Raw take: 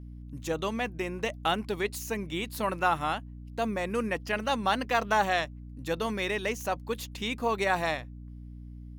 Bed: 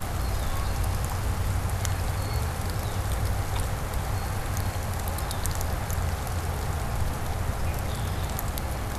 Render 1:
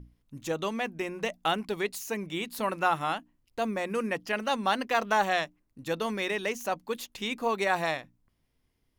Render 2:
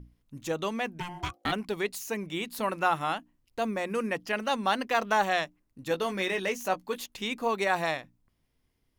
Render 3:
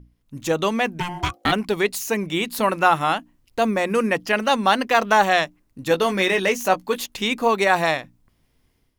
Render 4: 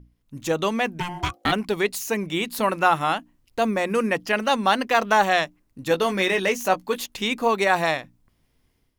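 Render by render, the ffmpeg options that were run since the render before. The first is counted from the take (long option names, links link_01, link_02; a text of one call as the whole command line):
ffmpeg -i in.wav -af "bandreject=frequency=60:width_type=h:width=6,bandreject=frequency=120:width_type=h:width=6,bandreject=frequency=180:width_type=h:width=6,bandreject=frequency=240:width_type=h:width=6,bandreject=frequency=300:width_type=h:width=6" out.wav
ffmpeg -i in.wav -filter_complex "[0:a]asplit=3[link_01][link_02][link_03];[link_01]afade=type=out:start_time=0.99:duration=0.02[link_04];[link_02]aeval=exprs='val(0)*sin(2*PI*530*n/s)':channel_layout=same,afade=type=in:start_time=0.99:duration=0.02,afade=type=out:start_time=1.51:duration=0.02[link_05];[link_03]afade=type=in:start_time=1.51:duration=0.02[link_06];[link_04][link_05][link_06]amix=inputs=3:normalize=0,asettb=1/sr,asplit=3[link_07][link_08][link_09];[link_07]atrim=end=5.894[link_10];[link_08]atrim=start=5.89:end=7.06,asetpts=PTS-STARTPTS,afade=type=in:duration=0.004:curve=qsin,afade=type=out:start_time=1.166:duration=0.004:curve=qsin,asplit=2[link_11][link_12];[link_12]adelay=16,volume=-6.5dB[link_13];[link_11][link_13]amix=inputs=2:normalize=0,atrim=end_sample=51597[link_14];[link_09]atrim=start=7.056[link_15];[link_10][link_14]acrossfade=duration=0.004:curve1=hsin:curve2=qsin[link_16];[link_16][link_15]acrossfade=duration=0.004:curve1=qsin:curve2=hsin" out.wav
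ffmpeg -i in.wav -af "dynaudnorm=framelen=200:gausssize=3:maxgain=10dB" out.wav
ffmpeg -i in.wav -af "volume=-2dB" out.wav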